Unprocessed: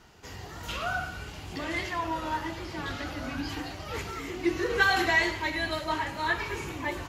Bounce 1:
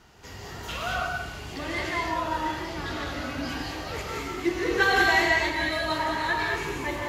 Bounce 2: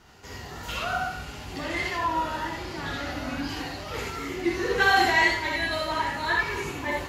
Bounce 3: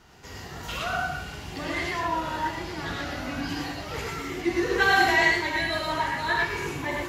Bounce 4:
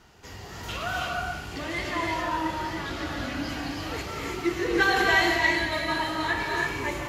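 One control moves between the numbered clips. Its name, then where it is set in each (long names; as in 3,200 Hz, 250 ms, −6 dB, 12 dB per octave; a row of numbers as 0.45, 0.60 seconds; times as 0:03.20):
reverb whose tail is shaped and stops, gate: 240, 100, 140, 360 milliseconds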